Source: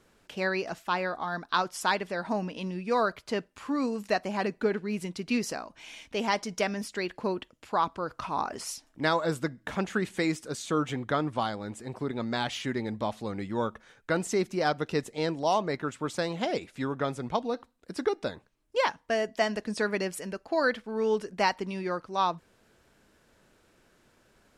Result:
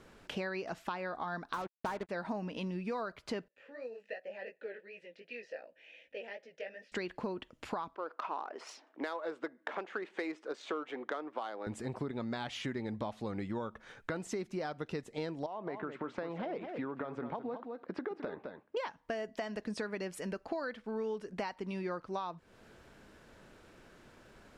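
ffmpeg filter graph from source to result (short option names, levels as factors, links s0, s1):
-filter_complex "[0:a]asettb=1/sr,asplit=3[s0][s1][s2];[s0]atrim=end=1.534[s3];[s1]atrim=start=1.53:end=2.09,asetpts=PTS-STARTPTS,afade=t=in:d=0.004:c=qsin,afade=t=out:st=0.556:d=0.004:c=qsin,aeval=exprs='val(0)+0.5*0.0266*sgn(val(0))':c=same,lowpass=1500,acrusher=bits=4:mix=0:aa=0.5[s4];[s2]atrim=start=2.086[s5];[s3][s4]acrossfade=d=0.004:c1=hsin:c2=qsin[s6];[s6][s5]acrossfade=d=0.004:c1=qsin:c2=hsin,asettb=1/sr,asplit=3[s7][s8][s9];[s7]atrim=end=3.484[s10];[s8]atrim=start=3.48:end=6.92,asetpts=PTS-STARTPTS,afade=t=in:d=0.004:c=qsin,afade=t=out:st=3.436:d=0.004:c=qsin,acrossover=split=580|6400[s11][s12][s13];[s11]acompressor=threshold=0.00708:ratio=4[s14];[s12]acompressor=threshold=0.0251:ratio=4[s15];[s13]acompressor=threshold=0.00126:ratio=4[s16];[s14][s15][s16]amix=inputs=3:normalize=0,flanger=delay=16:depth=5.5:speed=2.7,asplit=3[s17][s18][s19];[s17]bandpass=f=530:t=q:w=8,volume=1[s20];[s18]bandpass=f=1840:t=q:w=8,volume=0.501[s21];[s19]bandpass=f=2480:t=q:w=8,volume=0.355[s22];[s20][s21][s22]amix=inputs=3:normalize=0[s23];[s9]atrim=start=6.916[s24];[s10][s23]acrossfade=d=0.004:c1=hsin:c2=qsin[s25];[s25][s24]acrossfade=d=0.004:c1=qsin:c2=hsin,asettb=1/sr,asplit=3[s26][s27][s28];[s26]atrim=end=7.954[s29];[s27]atrim=start=7.95:end=11.67,asetpts=PTS-STARTPTS,afade=t=in:d=0.004:c=qsin,afade=t=out:st=3.716:d=0.004:c=qsin,adynamicsmooth=sensitivity=2.5:basefreq=2600,highpass=f=340:w=0.5412,highpass=f=340:w=1.3066[s30];[s28]atrim=start=11.666[s31];[s29][s30]acrossfade=d=0.004:c1=hsin:c2=qsin[s32];[s32][s31]acrossfade=d=0.004:c1=qsin:c2=hsin,asettb=1/sr,asplit=3[s33][s34][s35];[s33]atrim=end=15.464[s36];[s34]atrim=start=15.46:end=18.77,asetpts=PTS-STARTPTS,afade=t=in:d=0.004:c=qsin,afade=t=out:st=3.306:d=0.004:c=qsin,highpass=220,lowpass=2000,acompressor=threshold=0.0158:ratio=2.5:attack=3.2:release=140:knee=1:detection=peak,aecho=1:1:211:0.316,atrim=end_sample=145971[s37];[s35]atrim=start=18.766[s38];[s36][s37]acrossfade=d=0.004:c1=hsin:c2=qsin[s39];[s39][s38]acrossfade=d=0.004:c1=qsin:c2=hsin,alimiter=limit=0.0944:level=0:latency=1:release=451,acompressor=threshold=0.00794:ratio=5,highshelf=f=5500:g=-9.5,volume=2"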